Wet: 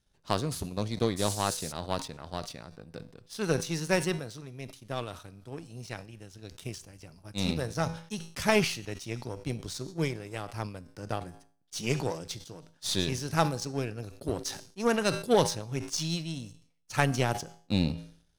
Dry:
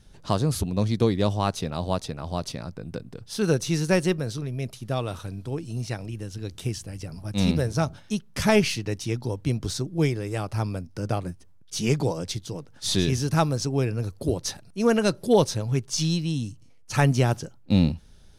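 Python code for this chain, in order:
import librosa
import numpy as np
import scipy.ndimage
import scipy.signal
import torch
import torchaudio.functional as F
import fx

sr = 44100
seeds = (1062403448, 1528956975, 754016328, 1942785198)

y = fx.low_shelf(x, sr, hz=430.0, db=-5.5)
y = fx.comb_fb(y, sr, f0_hz=55.0, decay_s=0.81, harmonics='odd', damping=0.0, mix_pct=50)
y = fx.dmg_noise_band(y, sr, seeds[0], low_hz=4000.0, high_hz=11000.0, level_db=-40.0, at=(1.16, 1.71), fade=0.02)
y = fx.power_curve(y, sr, exponent=1.4)
y = fx.sustainer(y, sr, db_per_s=110.0)
y = y * 10.0 ** (6.5 / 20.0)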